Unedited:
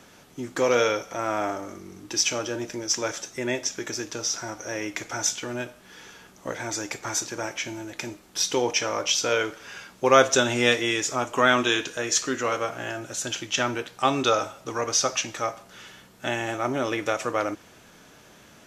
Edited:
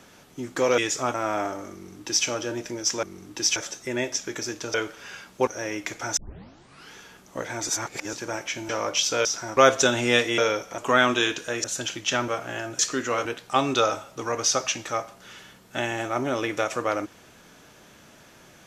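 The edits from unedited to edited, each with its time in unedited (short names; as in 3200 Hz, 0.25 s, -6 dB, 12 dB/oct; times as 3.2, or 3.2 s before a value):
0.78–1.18 swap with 10.91–11.27
1.77–2.3 copy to 3.07
4.25–4.57 swap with 9.37–10.1
5.27 tape start 0.77 s
6.78–7.23 reverse
7.79–8.81 cut
12.13–12.59 swap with 13.1–13.74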